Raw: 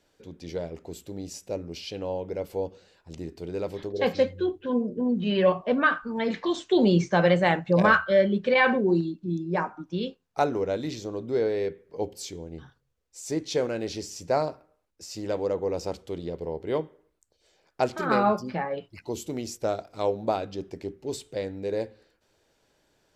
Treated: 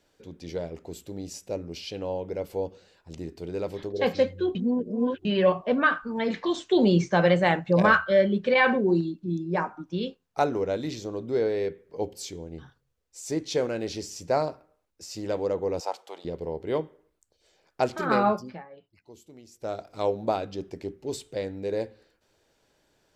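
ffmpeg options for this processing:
-filter_complex "[0:a]asettb=1/sr,asplit=3[a][b][c];[a]atrim=end=15.804[d];[b]atrim=start=15.8:end=16.25,asetpts=PTS-STARTPTS,afade=t=in:d=0.004:c=qsin,afade=t=out:st=0.446:d=0.004:c=qsin,highpass=f=820:t=q:w=3.2[e];[c]atrim=start=16.246[f];[d][e]acrossfade=d=0.004:c1=hsin:c2=qsin[g];[g][f]acrossfade=d=0.004:c1=qsin:c2=hsin,asplit=5[h][i][j][k][l];[h]atrim=end=4.552[m];[i]atrim=start=4.548:end=5.252,asetpts=PTS-STARTPTS,areverse[n];[j]atrim=start=5.248:end=18.64,asetpts=PTS-STARTPTS,afade=t=out:st=13.012:d=0.38:silence=0.141254[o];[k]atrim=start=18.64:end=19.51,asetpts=PTS-STARTPTS,volume=-17dB[p];[l]atrim=start=19.51,asetpts=PTS-STARTPTS,afade=t=in:d=0.38:silence=0.141254[q];[m][n]acrossfade=d=0.004:c1=hsin:c2=hsin[r];[o][p][q]concat=n=3:v=0:a=1[s];[r][s]acrossfade=d=0.004:c1=hsin:c2=hsin"

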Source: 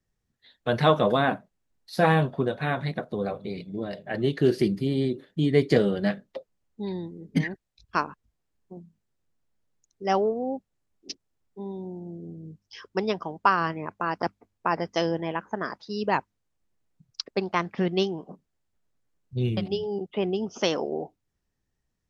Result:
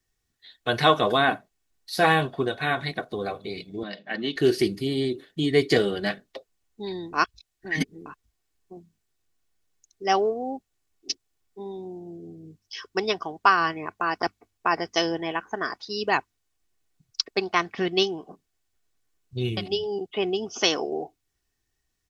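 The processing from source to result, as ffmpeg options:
-filter_complex "[0:a]asettb=1/sr,asplit=3[a][b][c];[a]atrim=end=3.834[d];[b]atrim=start=3.83:end=4.36,asetpts=PTS-STARTPTS,afade=t=in:d=0.004:c=qsin,afade=t=out:st=0.526:d=0.004:c=qsin,highpass=f=190:w=0.5412,highpass=f=190:w=1.3066,equalizer=f=210:t=q:w=4:g=7,equalizer=f=390:t=q:w=4:g=-10,equalizer=f=700:t=q:w=4:g=-6,lowpass=f=5.3k:w=0.5412,lowpass=f=5.3k:w=1.3066[e];[c]atrim=start=4.356[f];[d][e]acrossfade=d=0.004:c1=hsin:c2=qsin[g];[g][f]acrossfade=d=0.004:c1=qsin:c2=hsin,asplit=3[h][i][j];[h]atrim=end=7.132[k];[i]atrim=start=7.128:end=8.062,asetpts=PTS-STARTPTS,areverse[l];[j]atrim=start=8.058[m];[k][l]acrossfade=d=0.004:c1=hsin:c2=hsin[n];[n][m]acrossfade=d=0.004:c1=hsin:c2=hsin,tiltshelf=f=1.4k:g=-5,aecho=1:1:2.7:0.42,volume=3dB"

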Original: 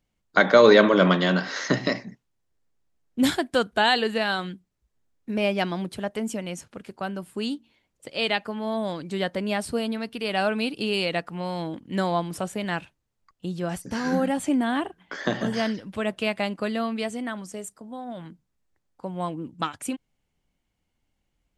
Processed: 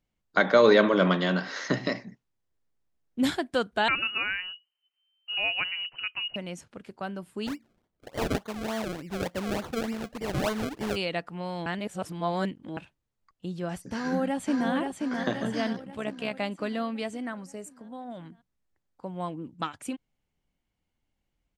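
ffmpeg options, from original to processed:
-filter_complex "[0:a]asettb=1/sr,asplit=3[a][b][c];[a]atrim=end=3.884[d];[b]atrim=start=3.88:end=6.36,asetpts=PTS-STARTPTS,afade=t=in:d=0.004:c=qsin,afade=t=out:st=2.476:d=0.004:c=qsin,lowpass=f=2.6k:t=q:w=0.5098,lowpass=f=2.6k:t=q:w=0.6013,lowpass=f=2.6k:t=q:w=0.9,lowpass=f=2.6k:t=q:w=2.563,afreqshift=-3100[e];[c]atrim=start=6.356[f];[d][e]acrossfade=d=0.004:c1=hsin:c2=qsin[g];[g][f]acrossfade=d=0.004:c1=qsin:c2=hsin,asplit=3[h][i][j];[h]afade=t=out:st=7.46:d=0.02[k];[i]acrusher=samples=33:mix=1:aa=0.000001:lfo=1:lforange=33:lforate=3.4,afade=t=in:st=7.46:d=0.02,afade=t=out:st=10.95:d=0.02[l];[j]afade=t=in:st=10.95:d=0.02[m];[k][l][m]amix=inputs=3:normalize=0,asplit=2[n][o];[o]afade=t=in:st=13.94:d=0.01,afade=t=out:st=14.7:d=0.01,aecho=0:1:530|1060|1590|2120|2650|3180|3710:0.630957|0.347027|0.190865|0.104976|0.0577365|0.0317551|0.0174653[p];[n][p]amix=inputs=2:normalize=0,asettb=1/sr,asplit=3[q][r][s];[q]atrim=end=15.734[t];[r]atrim=start=15.73:end=16.34,asetpts=PTS-STARTPTS,afade=t=in:d=0.004:c=qsin,afade=t=out:st=0.606:d=0.004:c=qsin,tremolo=f=65:d=0.571[u];[s]atrim=start=16.336[v];[t][u]acrossfade=d=0.004:c1=hsin:c2=qsin[w];[w][v]acrossfade=d=0.004:c1=qsin:c2=hsin,asettb=1/sr,asplit=3[x][y][z];[x]atrim=end=17.254[aa];[y]atrim=start=17.25:end=17.71,asetpts=PTS-STARTPTS,afade=t=in:d=0.004:c=qsin,afade=t=out:st=0.456:d=0.004:c=qsin,equalizer=f=3.4k:t=o:w=0.21:g=-13[ab];[z]atrim=start=17.706[ac];[aa][ab]acrossfade=d=0.004:c1=hsin:c2=qsin[ad];[ad][ac]acrossfade=d=0.004:c1=qsin:c2=hsin,asplit=3[ae][af][ag];[ae]atrim=end=11.662[ah];[af]atrim=start=11.658:end=12.772,asetpts=PTS-STARTPTS,areverse[ai];[ag]atrim=start=12.768[aj];[ah][ai]acrossfade=d=0.004:c1=hsin:c2=hsin[ak];[ak][aj]acrossfade=d=0.004:c1=hsin:c2=hsin,highshelf=f=8.2k:g=-7,volume=-4dB"

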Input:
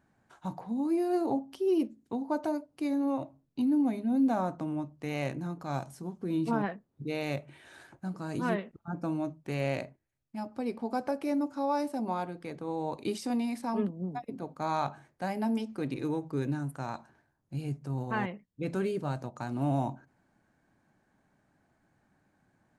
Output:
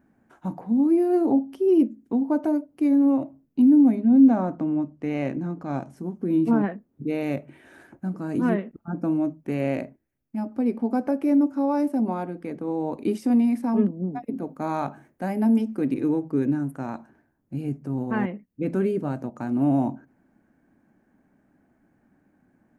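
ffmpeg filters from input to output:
-filter_complex "[0:a]asettb=1/sr,asplit=3[a][b][c];[a]atrim=end=3.954[d];[b]atrim=start=3.95:end=5.97,asetpts=PTS-STARTPTS,afade=t=in:d=0.004:c=qsin,afade=t=out:st=2.016:d=0.004:c=qsin,lowpass=6.7k[e];[c]atrim=start=5.966[f];[d][e]acrossfade=d=0.004:c1=hsin:c2=qsin[g];[g][f]acrossfade=d=0.004:c1=qsin:c2=hsin,asettb=1/sr,asplit=3[h][i][j];[h]atrim=end=14.244[k];[i]atrim=start=14.24:end=16,asetpts=PTS-STARTPTS,afade=t=in:d=0.004:c=qsin,afade=t=out:st=1.756:d=0.004:c=qsin,highshelf=f=6.9k:g=5.5[l];[j]atrim=start=15.996[m];[k][l]acrossfade=d=0.004:c1=hsin:c2=qsin[n];[n][m]acrossfade=d=0.004:c1=qsin:c2=hsin,equalizer=f=125:t=o:w=1:g=-5,equalizer=f=250:t=o:w=1:g=8,equalizer=f=1k:t=o:w=1:g=-4,equalizer=f=4k:t=o:w=1:g=-11,equalizer=f=8k:t=o:w=1:g=-7,volume=5dB"

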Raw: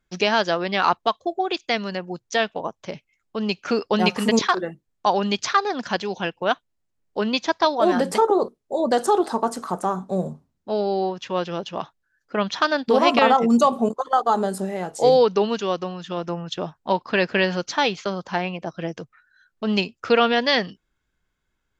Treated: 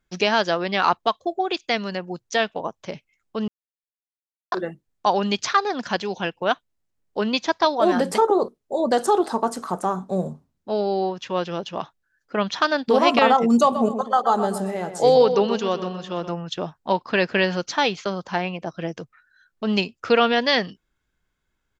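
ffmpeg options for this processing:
-filter_complex "[0:a]asplit=3[a][b][c];[a]afade=t=out:st=13.74:d=0.02[d];[b]asplit=2[e][f];[f]adelay=125,lowpass=f=3.4k:p=1,volume=-9.5dB,asplit=2[g][h];[h]adelay=125,lowpass=f=3.4k:p=1,volume=0.39,asplit=2[i][j];[j]adelay=125,lowpass=f=3.4k:p=1,volume=0.39,asplit=2[k][l];[l]adelay=125,lowpass=f=3.4k:p=1,volume=0.39[m];[e][g][i][k][m]amix=inputs=5:normalize=0,afade=t=in:st=13.74:d=0.02,afade=t=out:st=16.31:d=0.02[n];[c]afade=t=in:st=16.31:d=0.02[o];[d][n][o]amix=inputs=3:normalize=0,asplit=3[p][q][r];[p]atrim=end=3.48,asetpts=PTS-STARTPTS,afade=t=out:st=3.476:d=0.004:c=hsin[s];[q]atrim=start=3.48:end=4.52,asetpts=PTS-STARTPTS,volume=0[t];[r]atrim=start=4.52,asetpts=PTS-STARTPTS,afade=t=in:d=0.004:c=hsin[u];[s][t][u]concat=n=3:v=0:a=1"

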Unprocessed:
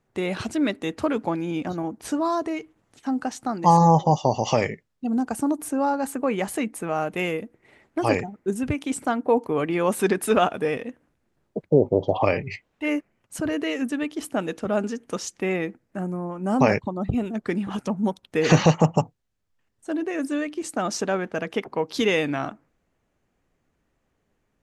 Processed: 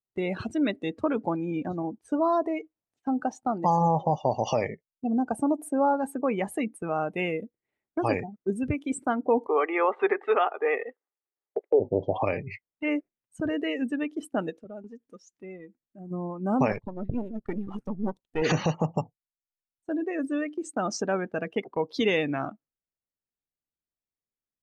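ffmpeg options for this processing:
-filter_complex "[0:a]asettb=1/sr,asplit=3[a][b][c];[a]atrim=end=2.094[d];[b]atrim=start=2.09:end=5.97,asetpts=PTS-STARTPTS,afade=t=in:d=0.004:c=qsin,afade=t=out:st=3.876:d=0.004:c=qsin,equalizer=f=640:t=o:w=0.77:g=5[e];[c]atrim=start=5.966[f];[d][e]acrossfade=d=0.004:c1=hsin:c2=qsin[g];[g][f]acrossfade=d=0.004:c1=qsin:c2=hsin,asplit=3[h][i][j];[h]afade=t=out:st=9.46:d=0.02[k];[i]highpass=f=370:w=0.5412,highpass=f=370:w=1.3066,equalizer=f=410:t=q:w=4:g=7,equalizer=f=810:t=q:w=4:g=9,equalizer=f=1.2k:t=q:w=4:g=9,equalizer=f=2k:t=q:w=4:g=9,equalizer=f=3.2k:t=q:w=4:g=4,lowpass=f=3.4k:w=0.5412,lowpass=f=3.4k:w=1.3066,afade=t=in:st=9.46:d=0.02,afade=t=out:st=11.79:d=0.02[l];[j]afade=t=in:st=11.79:d=0.02[m];[k][l][m]amix=inputs=3:normalize=0,asplit=3[n][o][p];[n]afade=t=out:st=14.49:d=0.02[q];[o]acompressor=threshold=-35dB:ratio=4:attack=3.2:release=140:knee=1:detection=peak,afade=t=in:st=14.49:d=0.02,afade=t=out:st=16.1:d=0.02[r];[p]afade=t=in:st=16.1:d=0.02[s];[q][r][s]amix=inputs=3:normalize=0,asettb=1/sr,asplit=3[t][u][v];[t]atrim=end=16.724[w];[u]atrim=start=16.72:end=18.42,asetpts=PTS-STARTPTS,afade=t=in:d=0.004:c=qsin,afade=t=out:st=1.696:d=0.004:c=qsin,aeval=exprs='if(lt(val(0),0),0.251*val(0),val(0))':c=same[x];[v]atrim=start=18.416[y];[w][x]acrossfade=d=0.004:c1=hsin:c2=qsin[z];[z][y]acrossfade=d=0.004:c1=qsin:c2=hsin,afftdn=nr=19:nf=-33,agate=range=-9dB:threshold=-37dB:ratio=16:detection=peak,alimiter=limit=-10.5dB:level=0:latency=1:release=346,volume=-2.5dB"

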